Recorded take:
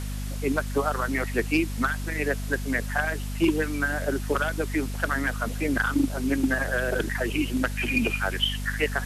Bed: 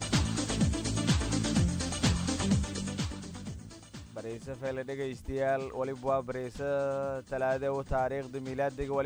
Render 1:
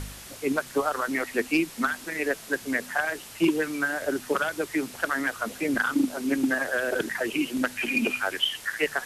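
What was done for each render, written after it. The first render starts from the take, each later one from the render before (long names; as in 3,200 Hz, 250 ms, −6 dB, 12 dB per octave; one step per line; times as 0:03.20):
hum removal 50 Hz, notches 5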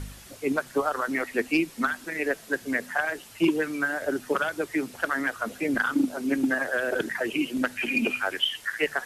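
broadband denoise 6 dB, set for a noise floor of −44 dBFS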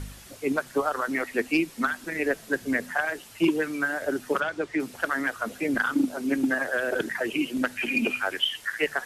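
0:02.03–0:02.94: low-shelf EQ 260 Hz +6 dB
0:04.40–0:04.80: high-frequency loss of the air 82 metres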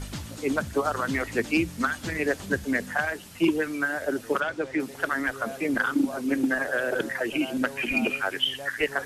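mix in bed −9 dB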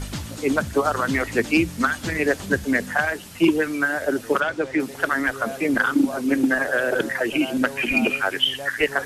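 level +5 dB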